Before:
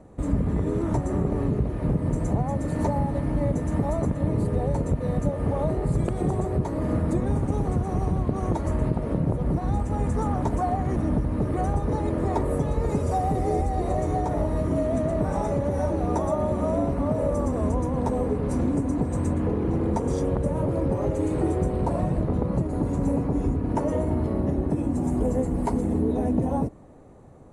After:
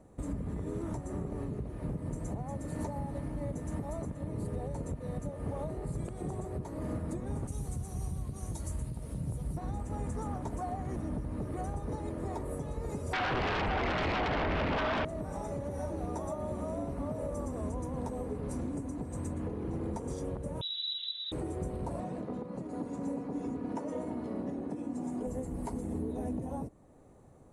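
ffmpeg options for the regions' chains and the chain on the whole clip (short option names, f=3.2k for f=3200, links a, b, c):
-filter_complex "[0:a]asettb=1/sr,asplit=3[a][b][c];[a]atrim=end=7.474[d];[b]atrim=start=7.47:end=9.57,asetpts=PTS-STARTPTS,afade=t=in:d=0.004:c=qsin,afade=t=out:st=2.096:d=0.004:c=qsin,highshelf=f=6.1k:g=11.5,acrossover=split=160|3000[e][f][g];[f]acompressor=threshold=-39dB:ratio=3:attack=3.2:release=140:knee=2.83:detection=peak[h];[e][h][g]amix=inputs=3:normalize=0,asplit=2[i][j];[j]adelay=15,volume=-12dB[k];[i][k]amix=inputs=2:normalize=0,atrim=end_sample=92610[l];[c]atrim=start=9.566[m];[d][l]acrossfade=d=0.004:c1=hsin:c2=qsin[n];[n][m]acrossfade=d=0.004:c1=qsin:c2=hsin,asettb=1/sr,asplit=3[o][p][q];[o]atrim=end=13.134[r];[p]atrim=start=13.13:end=15.05,asetpts=PTS-STARTPTS,afade=t=in:d=0.004:c=qsin,afade=t=out:st=1.916:d=0.004:c=qsin,lowpass=f=2.2k:t=q:w=10,aeval=exprs='0.237*sin(PI/2*3.98*val(0)/0.237)':c=same[s];[q]atrim=start=15.046[t];[r][s]acrossfade=d=0.004:c1=hsin:c2=qsin[u];[u][t]acrossfade=d=0.004:c1=qsin:c2=hsin,asettb=1/sr,asplit=3[v][w][x];[v]atrim=end=20.614[y];[w]atrim=start=20.61:end=21.32,asetpts=PTS-STARTPTS,afade=t=in:d=0.004:c=qsin,afade=t=out:st=0.706:d=0.004:c=qsin,acrossover=split=160|3000[z][aa][ab];[aa]acompressor=threshold=-39dB:ratio=2.5:attack=3.2:release=140:knee=2.83:detection=peak[ac];[z][ac][ab]amix=inputs=3:normalize=0,lowpass=f=3.4k:t=q:w=0.5098,lowpass=f=3.4k:t=q:w=0.6013,lowpass=f=3.4k:t=q:w=0.9,lowpass=f=3.4k:t=q:w=2.563,afreqshift=-4000[ad];[x]atrim=start=21.316[ae];[y][ad]acrossfade=d=0.004:c1=hsin:c2=qsin[af];[af][ae]acrossfade=d=0.004:c1=qsin:c2=hsin,asettb=1/sr,asplit=3[ag][ah][ai];[ag]atrim=end=22.004[aj];[ah]atrim=start=22:end=25.27,asetpts=PTS-STARTPTS,afade=t=in:d=0.004:c=qsin,afade=t=out:st=3.266:d=0.004:c=qsin,highpass=180,lowpass=7.2k,aecho=1:1:4.1:0.31,atrim=end_sample=144207[ak];[ai]atrim=start=25.266[al];[aj][ak]acrossfade=d=0.004:c1=hsin:c2=qsin[am];[am][al]acrossfade=d=0.004:c1=qsin:c2=hsin,highshelf=f=6.4k:g=10,alimiter=limit=-18.5dB:level=0:latency=1:release=421,volume=-8.5dB"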